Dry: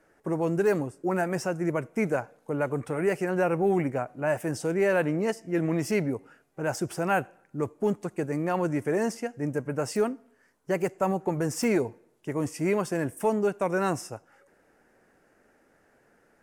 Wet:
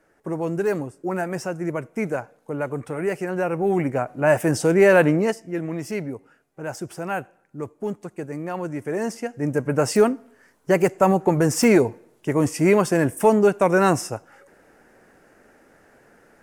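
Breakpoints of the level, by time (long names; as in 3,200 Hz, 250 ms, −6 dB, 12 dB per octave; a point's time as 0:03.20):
0:03.52 +1 dB
0:04.34 +9.5 dB
0:05.08 +9.5 dB
0:05.63 −2 dB
0:08.74 −2 dB
0:09.77 +9 dB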